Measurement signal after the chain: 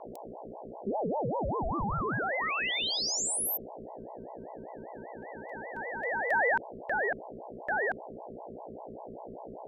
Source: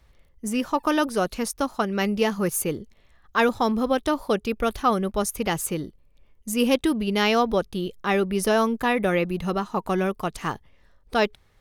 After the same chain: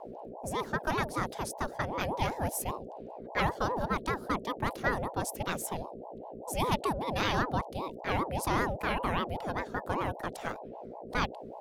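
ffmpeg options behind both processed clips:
-af "aeval=exprs='val(0)+0.02*(sin(2*PI*60*n/s)+sin(2*PI*2*60*n/s)/2+sin(2*PI*3*60*n/s)/3+sin(2*PI*4*60*n/s)/4+sin(2*PI*5*60*n/s)/5)':c=same,afreqshift=23,aeval=exprs='val(0)*sin(2*PI*530*n/s+530*0.45/5.1*sin(2*PI*5.1*n/s))':c=same,volume=0.501"

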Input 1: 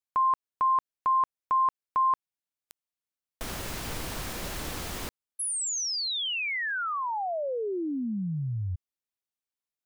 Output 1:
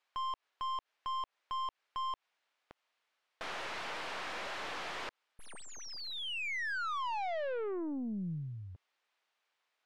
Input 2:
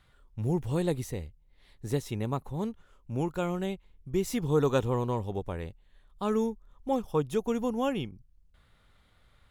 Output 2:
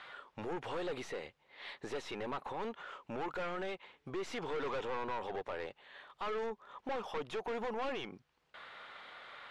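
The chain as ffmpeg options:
-filter_complex "[0:a]asplit=2[s0][s1];[s1]acompressor=threshold=0.0141:ratio=6:attack=71:release=124,volume=0.708[s2];[s0][s2]amix=inputs=2:normalize=0,highpass=640,aeval=exprs='(tanh(112*val(0)+0.3)-tanh(0.3))/112':c=same,alimiter=level_in=16.8:limit=0.0631:level=0:latency=1:release=93,volume=0.0596,lowpass=3000,volume=5.96"

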